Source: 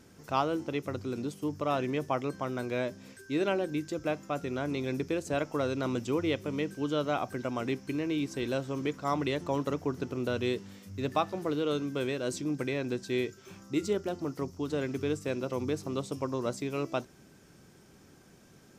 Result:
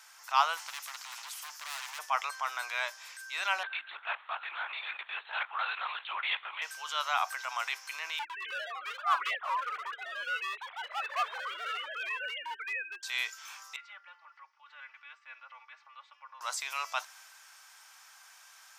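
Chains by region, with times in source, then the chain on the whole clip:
0.57–1.99 s: hard clipper -32 dBFS + spectrum-flattening compressor 2:1
3.63–6.62 s: peaking EQ 520 Hz -7.5 dB 0.57 oct + LPC vocoder at 8 kHz whisper
8.19–13.03 s: formants replaced by sine waves + hard clipper -27 dBFS + ever faster or slower copies 108 ms, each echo +2 st, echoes 3, each echo -6 dB
13.76–16.41 s: low-pass 2.2 kHz 24 dB/octave + differentiator + comb 3.5 ms, depth 92%
whole clip: steep high-pass 880 Hz 36 dB/octave; transient shaper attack -5 dB, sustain +2 dB; trim +8.5 dB

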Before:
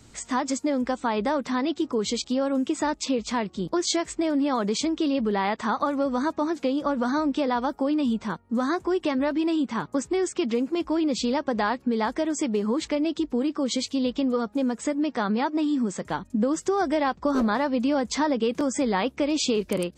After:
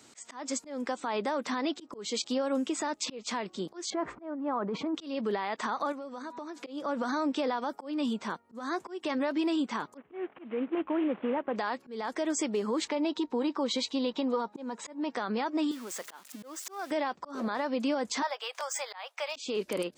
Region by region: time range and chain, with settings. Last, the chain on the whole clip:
3.90–4.95 s: resonant low-pass 1.2 kHz, resonance Q 1.7 + bass shelf 190 Hz +12 dB + compressor with a negative ratio -27 dBFS
5.92–6.67 s: de-hum 243.4 Hz, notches 17 + compression 12:1, threshold -34 dBFS
9.97–11.56 s: CVSD coder 16 kbps + low-pass 1.4 kHz 6 dB/octave
12.88–15.10 s: distance through air 74 m + small resonant body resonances 930/3900 Hz, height 12 dB, ringing for 30 ms
15.71–16.91 s: zero-crossing glitches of -28.5 dBFS + high-pass 970 Hz 6 dB/octave + treble shelf 6.3 kHz -11 dB
18.22–19.36 s: median filter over 3 samples + steep high-pass 660 Hz
whole clip: Bessel high-pass 370 Hz, order 2; peak limiter -22 dBFS; slow attack 230 ms

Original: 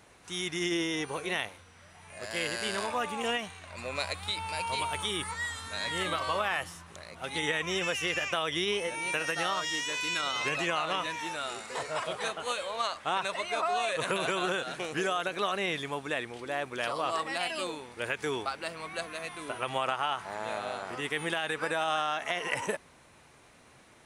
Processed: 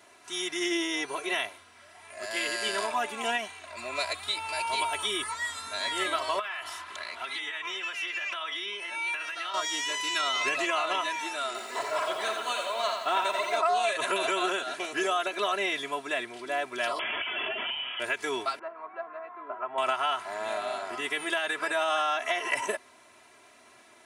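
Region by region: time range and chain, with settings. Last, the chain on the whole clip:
6.39–9.54 s: de-hum 46.44 Hz, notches 30 + compression 16:1, threshold -40 dBFS + high-order bell 2 kHz +9 dB 2.6 oct
11.46–13.57 s: treble shelf 6.2 kHz -5.5 dB + bit-crushed delay 85 ms, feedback 55%, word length 9-bit, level -5 dB
16.99–18.00 s: integer overflow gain 28 dB + frequency inversion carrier 3.4 kHz + level flattener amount 70%
18.59–19.78 s: low-pass 1.2 kHz 24 dB/octave + tilt EQ +4.5 dB/octave
whole clip: high-pass 200 Hz 12 dB/octave; peaking EQ 300 Hz -6.5 dB 0.52 oct; comb 3 ms, depth 96%

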